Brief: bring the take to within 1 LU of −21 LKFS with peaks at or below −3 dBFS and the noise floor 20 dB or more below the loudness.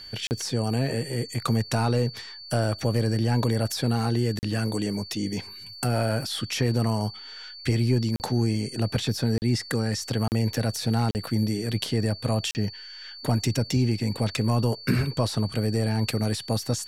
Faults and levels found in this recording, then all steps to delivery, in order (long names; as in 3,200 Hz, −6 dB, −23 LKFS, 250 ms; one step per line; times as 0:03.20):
number of dropouts 7; longest dropout 39 ms; interfering tone 4,500 Hz; level of the tone −40 dBFS; integrated loudness −26.5 LKFS; sample peak −10.5 dBFS; target loudness −21.0 LKFS
→ repair the gap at 0:00.27/0:04.39/0:08.16/0:09.38/0:10.28/0:11.11/0:12.51, 39 ms
notch filter 4,500 Hz, Q 30
level +5.5 dB